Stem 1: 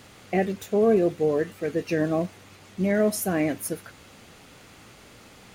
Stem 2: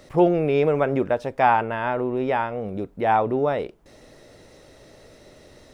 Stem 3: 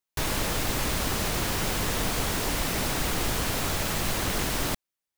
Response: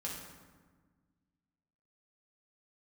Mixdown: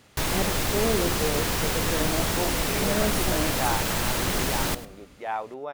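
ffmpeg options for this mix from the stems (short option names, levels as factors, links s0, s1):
-filter_complex "[0:a]volume=0.473,asplit=2[s0][s1];[s1]volume=0.282[s2];[1:a]highpass=f=930:p=1,adelay=2200,volume=0.447[s3];[2:a]volume=1.12,asplit=3[s4][s5][s6];[s5]volume=0.15[s7];[s6]volume=0.168[s8];[3:a]atrim=start_sample=2205[s9];[s7][s9]afir=irnorm=-1:irlink=0[s10];[s2][s8]amix=inputs=2:normalize=0,aecho=0:1:103:1[s11];[s0][s3][s4][s10][s11]amix=inputs=5:normalize=0"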